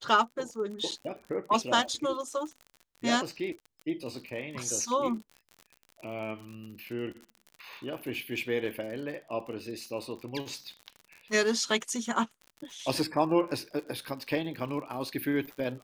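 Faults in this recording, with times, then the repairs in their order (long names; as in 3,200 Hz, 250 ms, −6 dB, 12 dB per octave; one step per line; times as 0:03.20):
surface crackle 55 per second −39 dBFS
0:00.91–0:00.92: drop-out 7.7 ms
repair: click removal
repair the gap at 0:00.91, 7.7 ms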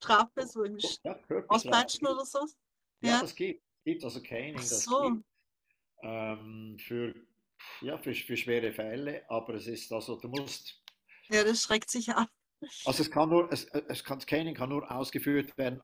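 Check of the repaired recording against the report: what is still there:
none of them is left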